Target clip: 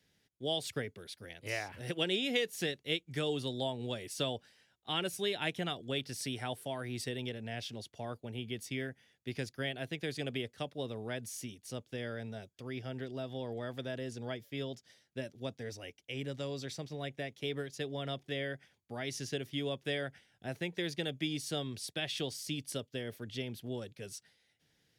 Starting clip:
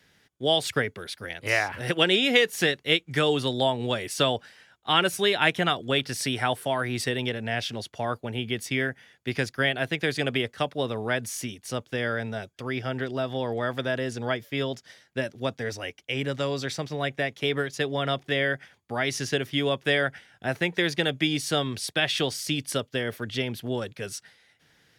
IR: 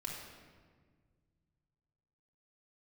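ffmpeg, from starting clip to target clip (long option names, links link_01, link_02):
-af "equalizer=frequency=1300:width_type=o:width=1.7:gain=-8.5,volume=-9dB"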